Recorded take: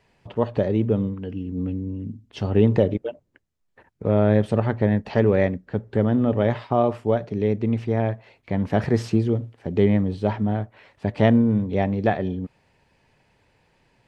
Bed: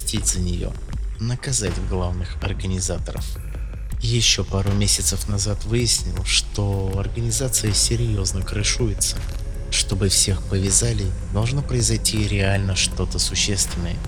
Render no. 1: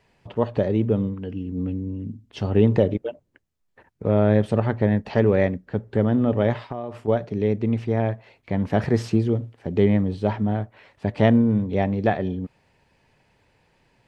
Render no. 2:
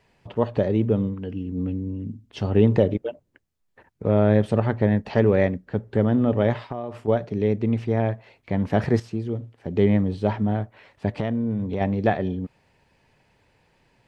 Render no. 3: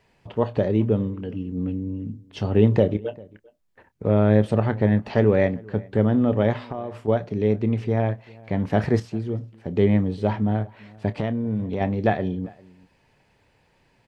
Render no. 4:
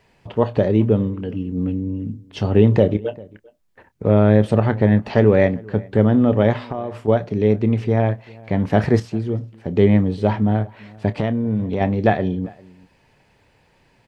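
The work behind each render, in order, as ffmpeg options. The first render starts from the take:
ffmpeg -i in.wav -filter_complex "[0:a]asettb=1/sr,asplit=3[link_01][link_02][link_03];[link_01]atrim=end=6.534[link_04];[link_02]atrim=start=6.53:end=7.08,asetpts=PTS-STARTPTS,afade=type=in:duration=0.004:curve=qsin,afade=type=out:start_time=0.546:duration=0.004:curve=qsin,acompressor=threshold=-28dB:ratio=4:attack=3.2:release=140:knee=1:detection=peak[link_05];[link_03]atrim=start=7.076[link_06];[link_04][link_05]acrossfade=duration=0.004:curve1=hsin:curve2=qsin[link_07];[link_07][link_06]acrossfade=duration=0.004:curve1=qsin:curve2=hsin" out.wav
ffmpeg -i in.wav -filter_complex "[0:a]asplit=3[link_01][link_02][link_03];[link_01]afade=type=out:start_time=11.17:duration=0.02[link_04];[link_02]acompressor=threshold=-21dB:ratio=6:attack=3.2:release=140:knee=1:detection=peak,afade=type=in:start_time=11.17:duration=0.02,afade=type=out:start_time=11.8:duration=0.02[link_05];[link_03]afade=type=in:start_time=11.8:duration=0.02[link_06];[link_04][link_05][link_06]amix=inputs=3:normalize=0,asplit=2[link_07][link_08];[link_07]atrim=end=9,asetpts=PTS-STARTPTS,afade=type=out:start_time=8.996:duration=0.004:curve=hsin:silence=0.251189[link_09];[link_08]atrim=start=9,asetpts=PTS-STARTPTS,afade=type=in:duration=0.93:silence=0.251189[link_10];[link_09][link_10]concat=n=2:v=0:a=1" out.wav
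ffmpeg -i in.wav -filter_complex "[0:a]asplit=2[link_01][link_02];[link_02]adelay=28,volume=-14dB[link_03];[link_01][link_03]amix=inputs=2:normalize=0,asplit=2[link_04][link_05];[link_05]adelay=396.5,volume=-24dB,highshelf=frequency=4000:gain=-8.92[link_06];[link_04][link_06]amix=inputs=2:normalize=0" out.wav
ffmpeg -i in.wav -af "volume=4.5dB,alimiter=limit=-2dB:level=0:latency=1" out.wav

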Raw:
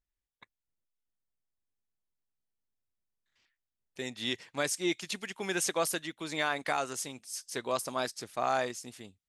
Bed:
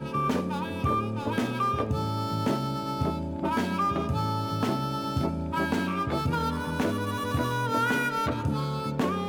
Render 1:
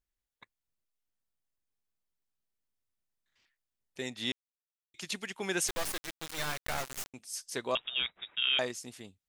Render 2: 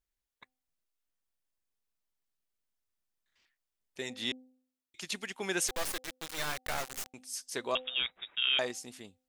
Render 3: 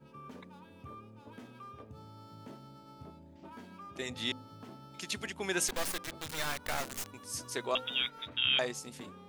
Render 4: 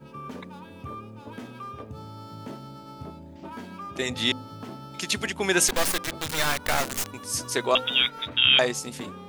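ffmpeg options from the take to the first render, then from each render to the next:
ffmpeg -i in.wav -filter_complex "[0:a]asettb=1/sr,asplit=3[link_01][link_02][link_03];[link_01]atrim=end=5.684[link_04];[link_02]atrim=start=5.68:end=7.14,asetpts=PTS-STARTPTS,afade=type=in:duration=0.004:curve=qsin,afade=type=out:start_time=1.456:duration=0.004:curve=qsin,acrusher=bits=3:dc=4:mix=0:aa=0.000001[link_05];[link_03]atrim=start=7.136[link_06];[link_04][link_05]acrossfade=duration=0.004:curve1=hsin:curve2=qsin[link_07];[link_07][link_06]acrossfade=duration=0.004:curve1=qsin:curve2=hsin,asettb=1/sr,asplit=3[link_08][link_09][link_10];[link_08]atrim=end=7.754[link_11];[link_09]atrim=start=7.75:end=8.59,asetpts=PTS-STARTPTS,afade=type=in:duration=0.004:curve=qsin,afade=type=out:start_time=0.836:duration=0.004:curve=qsin,lowpass=frequency=3300:width_type=q:width=0.5098,lowpass=frequency=3300:width_type=q:width=0.6013,lowpass=frequency=3300:width_type=q:width=0.9,lowpass=frequency=3300:width_type=q:width=2.563,afreqshift=-3900[link_12];[link_10]atrim=start=8.586[link_13];[link_11][link_12]acrossfade=duration=0.004:curve1=hsin:curve2=qsin[link_14];[link_14][link_13]acrossfade=duration=0.004:curve1=qsin:curve2=hsin,asplit=3[link_15][link_16][link_17];[link_15]atrim=end=4.32,asetpts=PTS-STARTPTS,afade=type=out:start_time=4.316:duration=0.004:curve=hsin[link_18];[link_16]atrim=start=4.32:end=4.94,asetpts=PTS-STARTPTS,volume=0[link_19];[link_17]atrim=start=4.94,asetpts=PTS-STARTPTS,afade=type=in:duration=0.004:curve=hsin[link_20];[link_18][link_19][link_20]concat=n=3:v=0:a=1" out.wav
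ffmpeg -i in.wav -af "equalizer=frequency=120:width=1.1:gain=-4.5,bandreject=frequency=256.1:width_type=h:width=4,bandreject=frequency=512.2:width_type=h:width=4,bandreject=frequency=768.3:width_type=h:width=4" out.wav
ffmpeg -i in.wav -i bed.wav -filter_complex "[1:a]volume=-22.5dB[link_01];[0:a][link_01]amix=inputs=2:normalize=0" out.wav
ffmpeg -i in.wav -af "volume=10.5dB" out.wav

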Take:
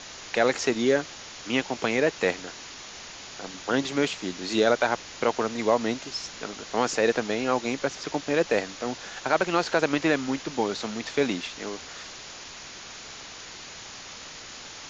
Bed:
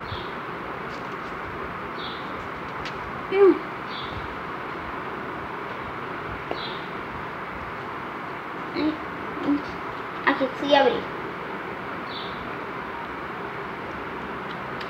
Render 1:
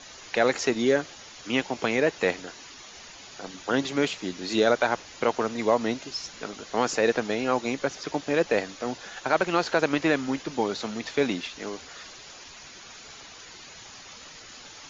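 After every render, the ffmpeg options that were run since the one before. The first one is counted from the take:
ffmpeg -i in.wav -af "afftdn=noise_reduction=8:noise_floor=-43" out.wav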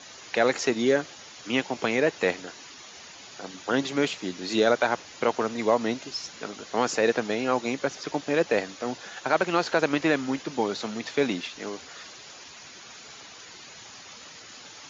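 ffmpeg -i in.wav -af "highpass=91" out.wav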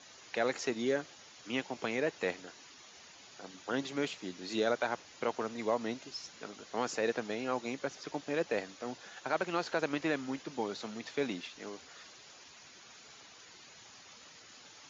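ffmpeg -i in.wav -af "volume=-9.5dB" out.wav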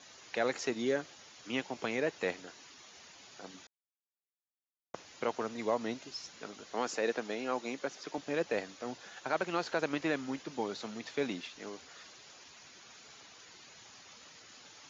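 ffmpeg -i in.wav -filter_complex "[0:a]asettb=1/sr,asplit=3[link_01][link_02][link_03];[link_01]atrim=end=6.744[link_04];[link_02]atrim=start=6.74:end=8.18,asetpts=PTS-STARTPTS,afade=type=in:duration=0.004:curve=qsin,afade=type=out:start_time=1.436:duration=0.004:curve=qsin,highpass=190[link_05];[link_03]atrim=start=8.176[link_06];[link_04][link_05]acrossfade=duration=0.004:curve1=hsin:curve2=qsin[link_07];[link_07][link_06]acrossfade=duration=0.004:curve1=qsin:curve2=hsin,asplit=3[link_08][link_09][link_10];[link_08]atrim=end=3.67,asetpts=PTS-STARTPTS,afade=type=out:start_time=3.666:duration=0.004:curve=hsin[link_11];[link_09]atrim=start=3.67:end=4.94,asetpts=PTS-STARTPTS,volume=0[link_12];[link_10]atrim=start=4.94,asetpts=PTS-STARTPTS,afade=type=in:duration=0.004:curve=hsin[link_13];[link_11][link_12][link_13]concat=n=3:v=0:a=1" out.wav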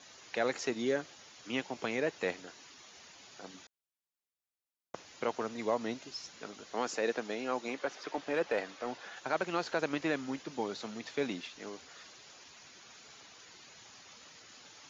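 ffmpeg -i in.wav -filter_complex "[0:a]asettb=1/sr,asplit=3[link_01][link_02][link_03];[link_01]atrim=end=7.684[link_04];[link_02]atrim=start=7.68:end=9.16,asetpts=PTS-STARTPTS,afade=type=in:duration=0.004:curve=qsin,afade=type=out:start_time=1.476:duration=0.004:curve=qsin,asplit=2[link_05][link_06];[link_06]highpass=frequency=720:poles=1,volume=12dB,asoftclip=type=tanh:threshold=-20dB[link_07];[link_05][link_07]amix=inputs=2:normalize=0,lowpass=frequency=1900:poles=1,volume=-6dB[link_08];[link_03]atrim=start=9.156[link_09];[link_04][link_08]acrossfade=duration=0.004:curve1=hsin:curve2=qsin[link_10];[link_10][link_09]acrossfade=duration=0.004:curve1=qsin:curve2=hsin" out.wav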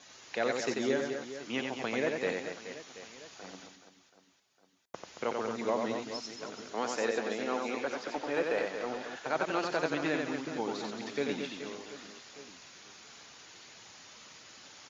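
ffmpeg -i in.wav -af "aecho=1:1:90|225|427.5|731.2|1187:0.631|0.398|0.251|0.158|0.1" out.wav

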